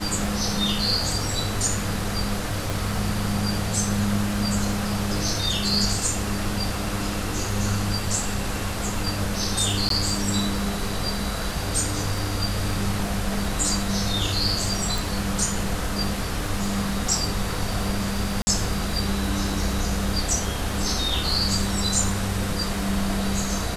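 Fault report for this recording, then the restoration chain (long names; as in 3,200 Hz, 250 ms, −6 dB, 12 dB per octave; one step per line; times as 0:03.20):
surface crackle 33 per second −32 dBFS
0:02.70: click
0:09.89–0:09.90: drop-out 13 ms
0:14.98: click
0:18.42–0:18.47: drop-out 50 ms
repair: click removal
repair the gap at 0:09.89, 13 ms
repair the gap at 0:18.42, 50 ms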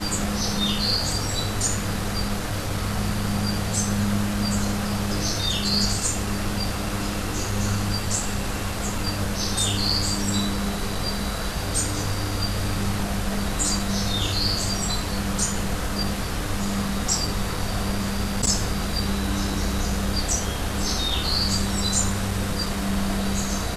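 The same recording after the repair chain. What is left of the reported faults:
none of them is left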